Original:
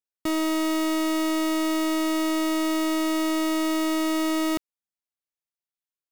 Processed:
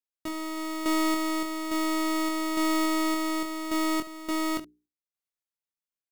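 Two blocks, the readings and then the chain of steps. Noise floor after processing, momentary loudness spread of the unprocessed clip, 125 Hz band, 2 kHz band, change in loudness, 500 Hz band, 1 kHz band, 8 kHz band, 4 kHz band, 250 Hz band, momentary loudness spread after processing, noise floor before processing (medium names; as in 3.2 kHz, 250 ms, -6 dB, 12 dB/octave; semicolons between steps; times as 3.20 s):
under -85 dBFS, 1 LU, no reading, -2.0 dB, -4.0 dB, -5.5 dB, -0.5 dB, -3.0 dB, -3.5 dB, -4.5 dB, 8 LU, under -85 dBFS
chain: hum notches 60/120/180/240/300/360/420 Hz; random-step tremolo, depth 85%; early reflections 23 ms -6.5 dB, 71 ms -17 dB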